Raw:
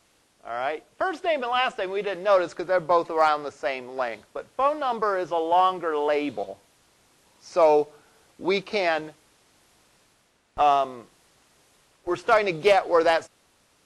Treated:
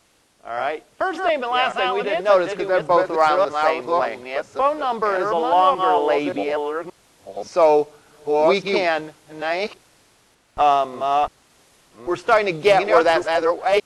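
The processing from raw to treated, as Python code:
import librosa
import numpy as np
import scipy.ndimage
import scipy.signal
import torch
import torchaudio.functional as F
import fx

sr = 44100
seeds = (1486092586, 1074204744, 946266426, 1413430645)

y = fx.reverse_delay(x, sr, ms=575, wet_db=-3.0)
y = y * 10.0 ** (3.5 / 20.0)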